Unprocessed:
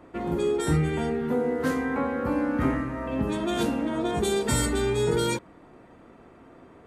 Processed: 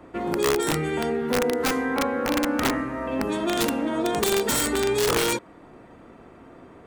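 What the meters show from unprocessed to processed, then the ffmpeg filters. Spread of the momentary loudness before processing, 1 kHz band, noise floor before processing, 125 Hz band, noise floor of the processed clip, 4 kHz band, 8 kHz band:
4 LU, +4.0 dB, -52 dBFS, -6.0 dB, -49 dBFS, +6.5 dB, +6.0 dB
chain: -filter_complex "[0:a]acrossover=split=230[s0][s1];[s0]acompressor=threshold=0.00316:ratio=2[s2];[s2][s1]amix=inputs=2:normalize=0,aeval=exprs='(mod(8.91*val(0)+1,2)-1)/8.91':c=same,volume=1.5"

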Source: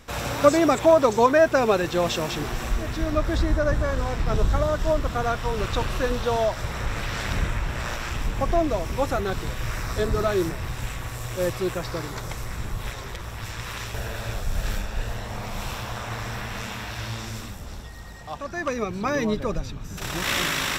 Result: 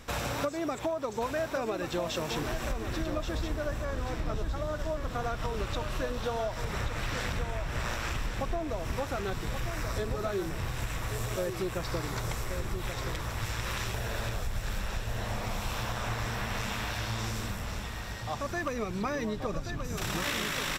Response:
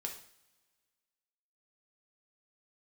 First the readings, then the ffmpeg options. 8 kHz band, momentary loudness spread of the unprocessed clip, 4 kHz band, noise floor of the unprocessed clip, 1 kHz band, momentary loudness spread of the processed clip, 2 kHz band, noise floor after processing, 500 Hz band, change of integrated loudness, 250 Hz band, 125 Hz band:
-5.0 dB, 14 LU, -5.5 dB, -36 dBFS, -8.5 dB, 3 LU, -6.0 dB, -38 dBFS, -10.5 dB, -8.0 dB, -8.5 dB, -5.5 dB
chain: -filter_complex "[0:a]acompressor=threshold=0.0355:ratio=12,asplit=2[s0][s1];[s1]aecho=0:1:1129|2258|3387|4516:0.398|0.119|0.0358|0.0107[s2];[s0][s2]amix=inputs=2:normalize=0"

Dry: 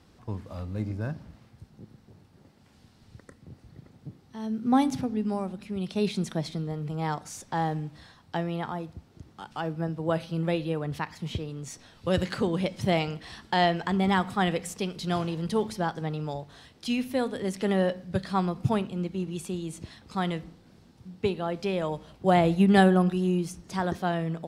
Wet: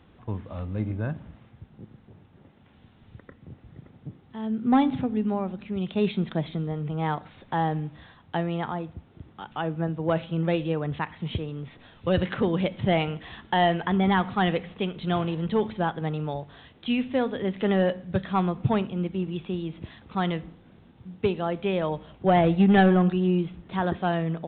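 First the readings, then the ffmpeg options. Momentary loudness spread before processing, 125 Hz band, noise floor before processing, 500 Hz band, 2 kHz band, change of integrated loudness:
14 LU, +2.5 dB, -58 dBFS, +2.0 dB, +1.5 dB, +2.0 dB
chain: -filter_complex "[0:a]asplit=2[s0][s1];[s1]aeval=exprs='0.126*(abs(mod(val(0)/0.126+3,4)-2)-1)':c=same,volume=0.355[s2];[s0][s2]amix=inputs=2:normalize=0,aresample=8000,aresample=44100"

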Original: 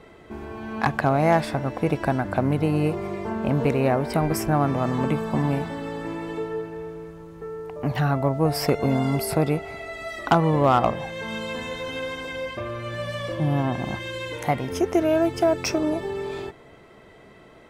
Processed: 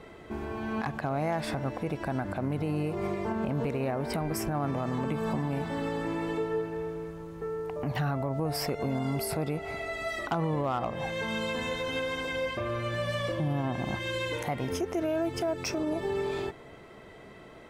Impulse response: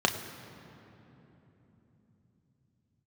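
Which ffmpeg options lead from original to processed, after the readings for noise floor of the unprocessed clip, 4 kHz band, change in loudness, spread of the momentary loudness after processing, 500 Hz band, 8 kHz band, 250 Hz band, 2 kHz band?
-49 dBFS, -3.5 dB, -7.5 dB, 6 LU, -6.5 dB, -5.0 dB, -7.0 dB, -4.5 dB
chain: -af "alimiter=limit=0.0794:level=0:latency=1:release=164"

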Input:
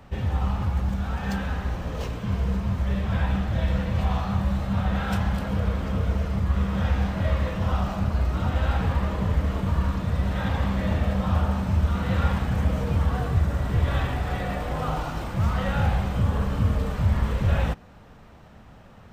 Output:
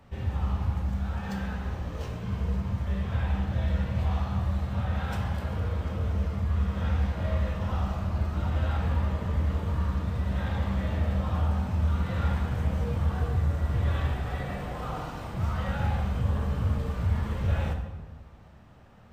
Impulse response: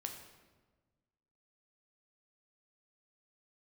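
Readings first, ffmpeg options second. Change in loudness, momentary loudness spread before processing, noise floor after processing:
-4.0 dB, 4 LU, -48 dBFS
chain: -filter_complex "[1:a]atrim=start_sample=2205,asetrate=48510,aresample=44100[s0];[0:a][s0]afir=irnorm=-1:irlink=0,volume=0.708"

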